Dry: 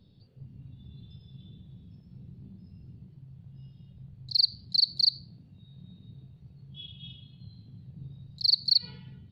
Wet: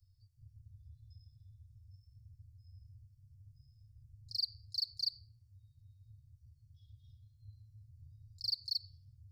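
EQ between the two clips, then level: elliptic band-stop 100–530 Hz, stop band 40 dB; Chebyshev band-stop 170–5100 Hz, order 5; bass shelf 84 Hz -5 dB; 0.0 dB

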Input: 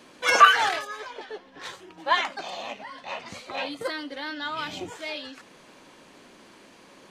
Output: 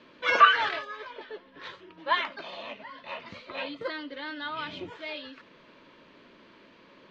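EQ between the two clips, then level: Butterworth band-stop 770 Hz, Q 5.1; low-pass 4.1 kHz 24 dB/octave; -3.0 dB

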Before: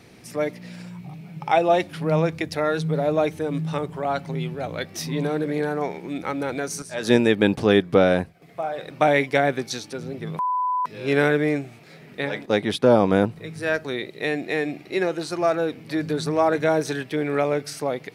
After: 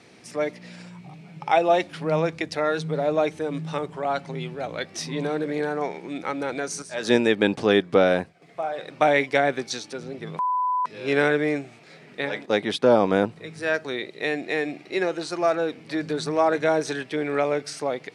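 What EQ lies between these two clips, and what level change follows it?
high-pass 260 Hz 6 dB/octave; low-pass 9.2 kHz 24 dB/octave; 0.0 dB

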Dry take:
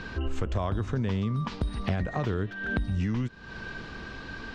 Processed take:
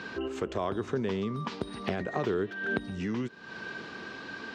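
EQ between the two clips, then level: high-pass 210 Hz 12 dB/octave; dynamic bell 390 Hz, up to +7 dB, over -51 dBFS, Q 3.5; 0.0 dB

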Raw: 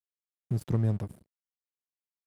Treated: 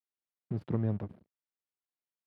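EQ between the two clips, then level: high-pass 100 Hz; distance through air 350 m; peaking EQ 130 Hz -8.5 dB 0.33 oct; 0.0 dB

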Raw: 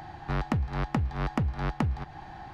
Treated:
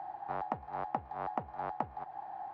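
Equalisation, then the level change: band-pass filter 770 Hz, Q 2.9; +3.0 dB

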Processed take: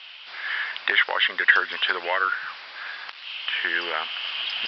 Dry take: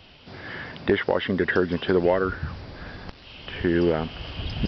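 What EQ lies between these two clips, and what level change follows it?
Butterworth band-pass 1.9 kHz, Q 0.78; treble shelf 2.6 kHz +12 dB; +5.5 dB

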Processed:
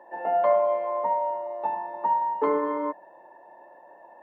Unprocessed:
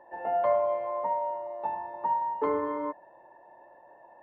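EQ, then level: high-pass 170 Hz 24 dB/octave; +4.0 dB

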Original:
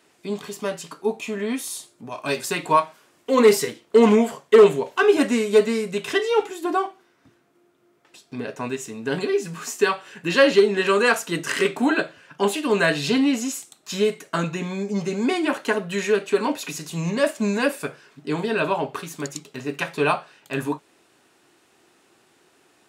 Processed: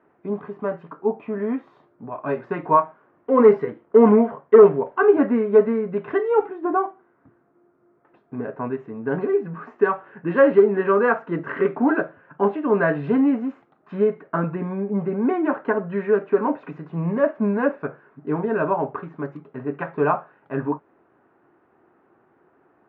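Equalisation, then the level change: low-pass 1.5 kHz 24 dB/octave; +1.5 dB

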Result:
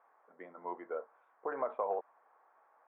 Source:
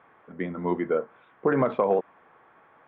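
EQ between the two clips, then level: ladder band-pass 980 Hz, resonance 25%; tilt shelf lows +3 dB, about 1.4 kHz; 0.0 dB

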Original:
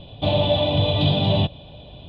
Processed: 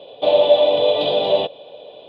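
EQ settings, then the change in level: resonant high-pass 480 Hz, resonance Q 4.9; 0.0 dB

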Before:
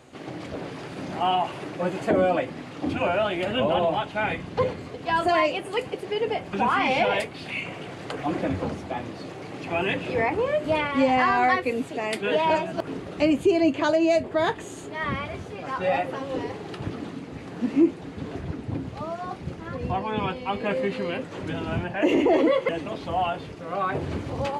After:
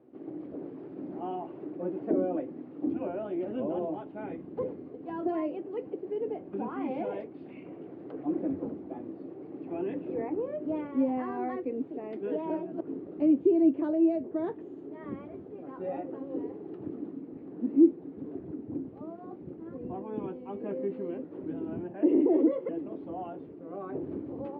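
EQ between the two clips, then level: band-pass filter 320 Hz, Q 2.7; distance through air 150 m; 0.0 dB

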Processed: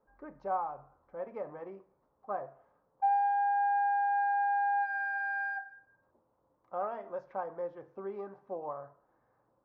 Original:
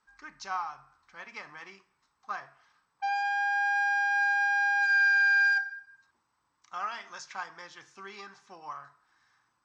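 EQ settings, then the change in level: resonant low-pass 550 Hz, resonance Q 4.9; +5.0 dB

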